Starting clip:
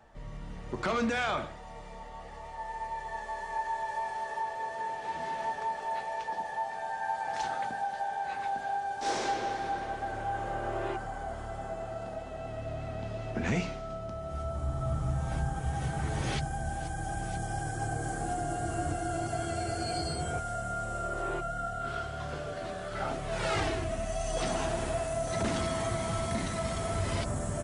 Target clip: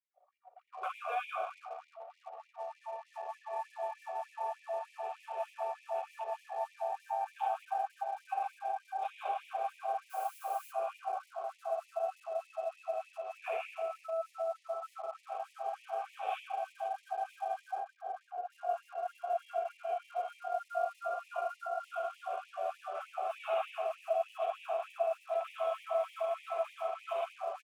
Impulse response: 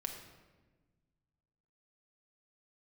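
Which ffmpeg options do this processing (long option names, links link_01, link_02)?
-filter_complex "[0:a]aresample=8000,aresample=44100,acrossover=split=300|570|2600[link_01][link_02][link_03][link_04];[link_01]asoftclip=type=tanh:threshold=-38.5dB[link_05];[link_05][link_02][link_03][link_04]amix=inputs=4:normalize=0,asplit=3[link_06][link_07][link_08];[link_06]bandpass=frequency=730:width_type=q:width=8,volume=0dB[link_09];[link_07]bandpass=frequency=1090:width_type=q:width=8,volume=-6dB[link_10];[link_08]bandpass=frequency=2440:width_type=q:width=8,volume=-9dB[link_11];[link_09][link_10][link_11]amix=inputs=3:normalize=0,acrusher=bits=10:mix=0:aa=0.000001,asplit=3[link_12][link_13][link_14];[link_12]afade=type=out:start_time=10.09:duration=0.02[link_15];[link_13]aemphasis=mode=production:type=bsi,afade=type=in:start_time=10.09:duration=0.02,afade=type=out:start_time=10.71:duration=0.02[link_16];[link_14]afade=type=in:start_time=10.71:duration=0.02[link_17];[link_15][link_16][link_17]amix=inputs=3:normalize=0,alimiter=level_in=10dB:limit=-24dB:level=0:latency=1:release=171,volume=-10dB[link_18];[1:a]atrim=start_sample=2205,asetrate=24255,aresample=44100[link_19];[link_18][link_19]afir=irnorm=-1:irlink=0,asettb=1/sr,asplit=3[link_20][link_21][link_22];[link_20]atrim=end=17.784[link_23];[link_21]atrim=start=17.78:end=18.52,asetpts=PTS-STARTPTS,afade=type=in:duration=0.004:curve=qsin,afade=type=out:start_time=0.736:duration=0.004:curve=qsin,acrossover=split=460[link_24][link_25];[link_25]acompressor=threshold=-46dB:ratio=2.5[link_26];[link_24][link_26]amix=inputs=2:normalize=0[link_27];[link_22]atrim=start=18.516[link_28];[link_23][link_27]acrossfade=duration=0.004:curve1=hsin:curve2=qsin[link_29];[link_29][link_28]acrossfade=duration=0.004:curve1=qsin:curve2=hsin,anlmdn=0.00158,afftfilt=real='re*gte(b*sr/1024,360*pow(1900/360,0.5+0.5*sin(2*PI*3.3*pts/sr)))':imag='im*gte(b*sr/1024,360*pow(1900/360,0.5+0.5*sin(2*PI*3.3*pts/sr)))':win_size=1024:overlap=0.75,volume=6dB"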